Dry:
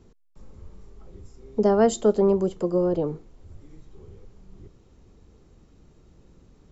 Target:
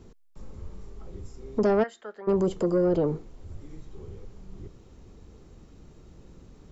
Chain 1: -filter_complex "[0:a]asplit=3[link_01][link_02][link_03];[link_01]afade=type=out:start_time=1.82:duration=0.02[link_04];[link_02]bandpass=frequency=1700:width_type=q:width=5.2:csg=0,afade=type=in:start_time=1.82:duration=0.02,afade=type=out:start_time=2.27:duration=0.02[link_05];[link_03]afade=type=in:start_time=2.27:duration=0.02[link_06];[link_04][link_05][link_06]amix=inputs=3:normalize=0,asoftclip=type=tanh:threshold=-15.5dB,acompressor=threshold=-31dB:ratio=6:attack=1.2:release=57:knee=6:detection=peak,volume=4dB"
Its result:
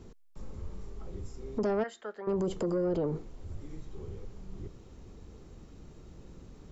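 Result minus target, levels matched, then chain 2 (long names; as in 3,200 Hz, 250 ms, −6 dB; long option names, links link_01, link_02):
downward compressor: peak gain reduction +7.5 dB
-filter_complex "[0:a]asplit=3[link_01][link_02][link_03];[link_01]afade=type=out:start_time=1.82:duration=0.02[link_04];[link_02]bandpass=frequency=1700:width_type=q:width=5.2:csg=0,afade=type=in:start_time=1.82:duration=0.02,afade=type=out:start_time=2.27:duration=0.02[link_05];[link_03]afade=type=in:start_time=2.27:duration=0.02[link_06];[link_04][link_05][link_06]amix=inputs=3:normalize=0,asoftclip=type=tanh:threshold=-15.5dB,acompressor=threshold=-22dB:ratio=6:attack=1.2:release=57:knee=6:detection=peak,volume=4dB"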